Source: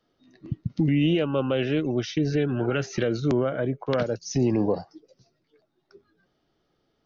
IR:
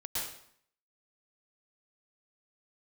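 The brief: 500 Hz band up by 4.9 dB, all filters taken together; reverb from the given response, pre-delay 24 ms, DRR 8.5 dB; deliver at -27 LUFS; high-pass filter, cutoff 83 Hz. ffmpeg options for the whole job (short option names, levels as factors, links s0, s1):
-filter_complex "[0:a]highpass=83,equalizer=f=500:t=o:g=6,asplit=2[s0][s1];[1:a]atrim=start_sample=2205,adelay=24[s2];[s1][s2]afir=irnorm=-1:irlink=0,volume=0.266[s3];[s0][s3]amix=inputs=2:normalize=0,volume=0.562"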